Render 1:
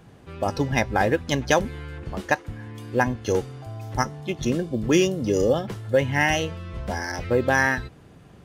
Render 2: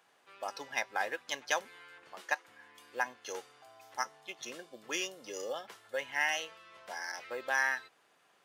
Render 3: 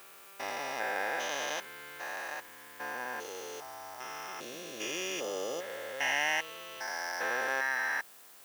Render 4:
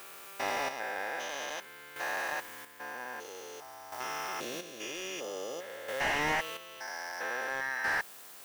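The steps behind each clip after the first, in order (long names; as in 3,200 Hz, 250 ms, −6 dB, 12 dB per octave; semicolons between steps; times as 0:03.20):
high-pass filter 880 Hz 12 dB per octave; level −8 dB
spectrum averaged block by block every 400 ms; background noise blue −63 dBFS; level +7.5 dB
square-wave tremolo 0.51 Hz, depth 60%, duty 35%; slew-rate limiting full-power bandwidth 38 Hz; level +5 dB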